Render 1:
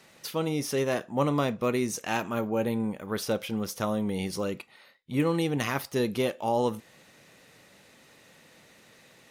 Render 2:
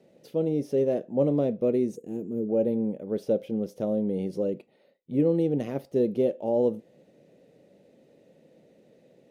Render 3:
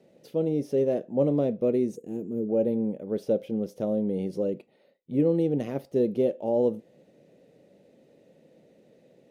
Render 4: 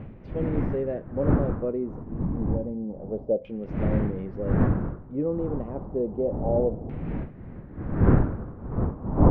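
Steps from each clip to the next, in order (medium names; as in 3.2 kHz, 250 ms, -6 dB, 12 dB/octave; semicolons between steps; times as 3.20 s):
treble shelf 2.4 kHz -11.5 dB; time-frequency box 1.96–2.49 s, 510–6500 Hz -18 dB; FFT filter 100 Hz 0 dB, 150 Hz +8 dB, 560 Hz +13 dB, 1.1 kHz -11 dB, 2.9 kHz -1 dB; trim -7.5 dB
no audible change
wind noise 200 Hz -22 dBFS; time-frequency box 2.03–2.90 s, 330–1500 Hz -7 dB; LFO low-pass saw down 0.29 Hz 650–2500 Hz; trim -5 dB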